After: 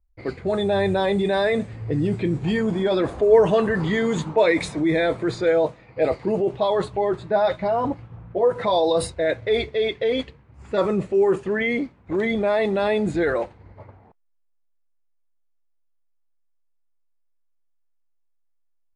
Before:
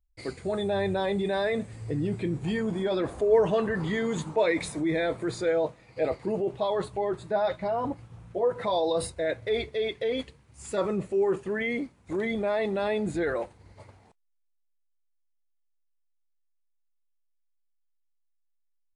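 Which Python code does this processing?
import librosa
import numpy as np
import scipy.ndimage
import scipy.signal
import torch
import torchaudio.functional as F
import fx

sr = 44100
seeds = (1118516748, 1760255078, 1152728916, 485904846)

y = fx.env_lowpass(x, sr, base_hz=1300.0, full_db=-22.0)
y = y * librosa.db_to_amplitude(6.5)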